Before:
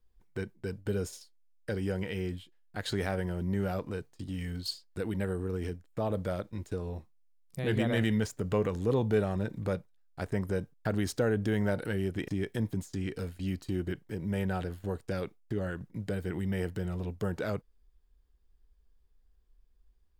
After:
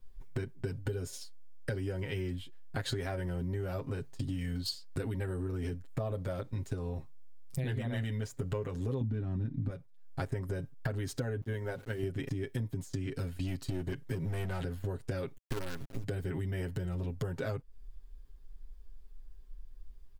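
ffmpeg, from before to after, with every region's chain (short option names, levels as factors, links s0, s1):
-filter_complex "[0:a]asettb=1/sr,asplit=3[s0][s1][s2];[s0]atrim=end=9.014[s3];[s1]atrim=start=9.01:end=9.7,asetpts=PTS-STARTPTS,afade=t=in:d=0.004:c=qsin,afade=t=out:st=0.686:d=0.004:c=qsin,lowpass=4900,lowshelf=f=360:t=q:w=3:g=9[s4];[s2]atrim=start=9.696[s5];[s3][s4]acrossfade=d=0.004:c1=hsin:c2=qsin[s6];[s6][s5]acrossfade=d=0.004:c1=qsin:c2=hsin,asettb=1/sr,asplit=3[s7][s8][s9];[s7]atrim=end=11.414[s10];[s8]atrim=start=11.41:end=12.03,asetpts=PTS-STARTPTS,afade=t=in:d=0.004:c=qsin,afade=t=out:st=0.616:d=0.004:c=qsin,bandreject=f=50:t=h:w=6,bandreject=f=100:t=h:w=6,bandreject=f=150:t=h:w=6,bandreject=f=200:t=h:w=6,bandreject=f=250:t=h:w=6,bandreject=f=300:t=h:w=6,bandreject=f=350:t=h:w=6,agate=range=0.0224:threshold=0.0447:ratio=3:release=100:detection=peak,aeval=exprs='val(0)*gte(abs(val(0)),0.00158)':c=same[s11];[s9]atrim=start=12.026[s12];[s10][s11]acrossfade=d=0.004:c1=hsin:c2=qsin[s13];[s13][s12]acrossfade=d=0.004:c1=qsin:c2=hsin,asettb=1/sr,asplit=3[s14][s15][s16];[s14]atrim=end=13.384[s17];[s15]atrim=start=13.38:end=14.65,asetpts=PTS-STARTPTS,afade=t=in:d=0.004:c=qsin,afade=t=out:st=1.266:d=0.004:c=qsin,asoftclip=type=hard:threshold=0.0398,equalizer=f=7800:w=0.32:g=3.5[s18];[s16]atrim=start=14.646[s19];[s17][s18]acrossfade=d=0.004:c1=hsin:c2=qsin[s20];[s20][s19]acrossfade=d=0.004:c1=qsin:c2=hsin,asettb=1/sr,asplit=3[s21][s22][s23];[s21]atrim=end=15.374[s24];[s22]atrim=start=15.37:end=16.04,asetpts=PTS-STARTPTS,afade=t=in:d=0.004:c=qsin,afade=t=out:st=0.666:d=0.004:c=qsin,lowshelf=f=69:g=-12,acompressor=mode=upward:threshold=0.00398:ratio=2.5:attack=3.2:release=140:knee=2.83:detection=peak,acrusher=bits=6:dc=4:mix=0:aa=0.000001[s25];[s23]atrim=start=16.036[s26];[s24][s25]acrossfade=d=0.004:c1=hsin:c2=qsin[s27];[s27][s26]acrossfade=d=0.004:c1=qsin:c2=hsin,lowshelf=f=120:g=9,aecho=1:1:7.5:0.84,acompressor=threshold=0.0126:ratio=8,volume=1.88"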